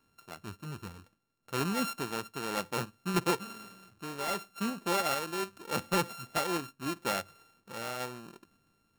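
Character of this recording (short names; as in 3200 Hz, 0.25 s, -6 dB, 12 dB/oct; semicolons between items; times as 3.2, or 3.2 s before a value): a buzz of ramps at a fixed pitch in blocks of 32 samples; random-step tremolo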